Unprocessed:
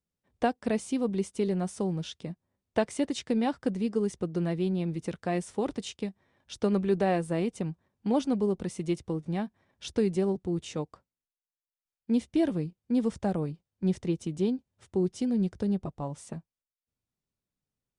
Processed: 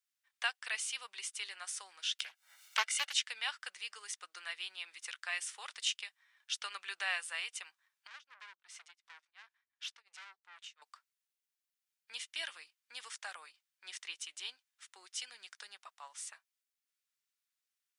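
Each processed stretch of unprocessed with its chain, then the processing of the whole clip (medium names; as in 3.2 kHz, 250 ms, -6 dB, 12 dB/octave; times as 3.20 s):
2.19–3.14 s: comb 1.4 ms, depth 85% + upward compressor, threshold -32 dBFS + loudspeaker Doppler distortion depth 0.59 ms
8.07–10.82 s: tremolo 2.8 Hz, depth 99% + valve stage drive 41 dB, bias 0.45 + distance through air 78 m
whole clip: high-pass 1.4 kHz 24 dB/octave; dynamic bell 2.9 kHz, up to +5 dB, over -59 dBFS, Q 4.5; trim +4.5 dB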